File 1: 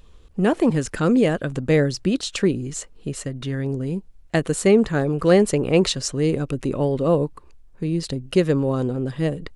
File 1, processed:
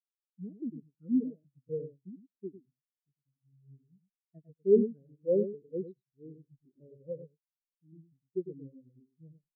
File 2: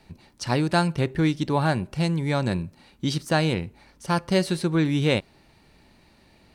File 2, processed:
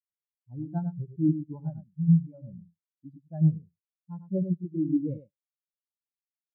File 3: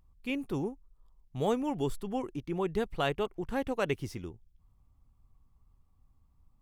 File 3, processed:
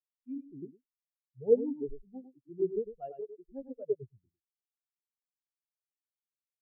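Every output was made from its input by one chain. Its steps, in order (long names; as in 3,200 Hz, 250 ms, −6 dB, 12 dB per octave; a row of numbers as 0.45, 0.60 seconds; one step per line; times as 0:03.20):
repeating echo 102 ms, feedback 22%, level −3 dB
every bin expanded away from the loudest bin 4 to 1
normalise the peak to −12 dBFS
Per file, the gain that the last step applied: −9.5, −3.5, +3.0 decibels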